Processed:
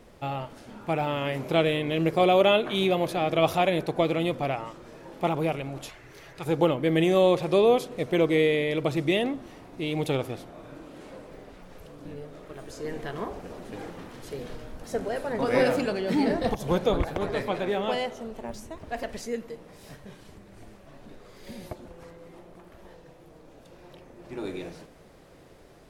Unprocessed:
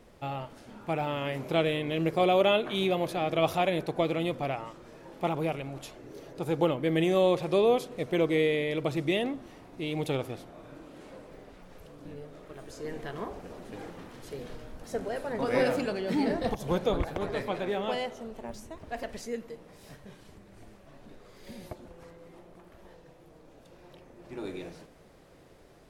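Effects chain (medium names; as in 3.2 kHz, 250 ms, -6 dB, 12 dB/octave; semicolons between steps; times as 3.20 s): 5.89–6.46 s: graphic EQ 250/500/2000 Hz -12/-8/+8 dB; trim +3.5 dB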